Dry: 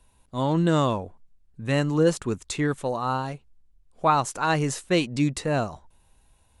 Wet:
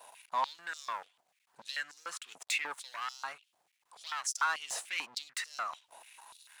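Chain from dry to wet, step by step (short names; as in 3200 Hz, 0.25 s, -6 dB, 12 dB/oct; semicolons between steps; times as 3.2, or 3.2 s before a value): compressor 4:1, threshold -40 dBFS, peak gain reduction 20.5 dB; sample leveller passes 3; stepped high-pass 6.8 Hz 700–5400 Hz; gain -2 dB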